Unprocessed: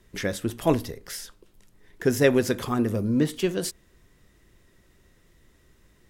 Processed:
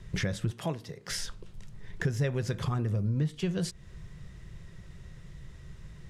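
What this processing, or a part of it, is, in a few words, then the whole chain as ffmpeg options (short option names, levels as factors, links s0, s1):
jukebox: -filter_complex "[0:a]lowpass=7400,lowshelf=f=200:t=q:w=3:g=7.5,acompressor=threshold=0.0178:ratio=4,asettb=1/sr,asplit=3[s0][s1][s2];[s0]atrim=end=0.514[s3];[s1]atrim=start=0.51:end=1.1,asetpts=PTS-STARTPTS,afade=t=in:d=0.004:c=qsin,afade=t=out:st=0.586:d=0.004:c=qsin,highpass=210[s4];[s2]atrim=start=1.096[s5];[s3][s4]acrossfade=d=0.004:c1=hsin:c2=qsin[s6];[s6][s5]acrossfade=d=0.004:c1=qsin:c2=hsin,volume=1.88"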